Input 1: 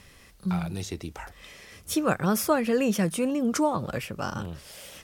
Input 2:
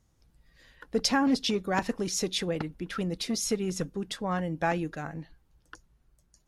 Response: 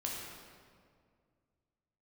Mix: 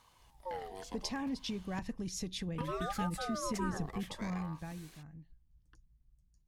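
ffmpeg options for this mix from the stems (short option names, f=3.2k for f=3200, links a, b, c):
-filter_complex "[0:a]aeval=exprs='val(0)*sin(2*PI*810*n/s+810*0.3/0.65*sin(2*PI*0.65*n/s))':c=same,volume=-11dB,asplit=3[a][b][c];[a]atrim=end=1.79,asetpts=PTS-STARTPTS,afade=t=out:st=1.786:d=0.004:c=hsin[d];[b]atrim=start=1.79:end=2.58,asetpts=PTS-STARTPTS,volume=0[e];[c]atrim=start=2.58,asetpts=PTS-STARTPTS,afade=t=in:d=0.004:c=hsin[f];[d][e][f]concat=n=3:v=0:a=1[g];[1:a]asubboost=boost=8.5:cutoff=180,acompressor=threshold=-34dB:ratio=2,volume=-6.5dB,afade=t=out:st=4.16:d=0.74:silence=0.251189[h];[g][h]amix=inputs=2:normalize=0,bandreject=f=1.4k:w=7.9"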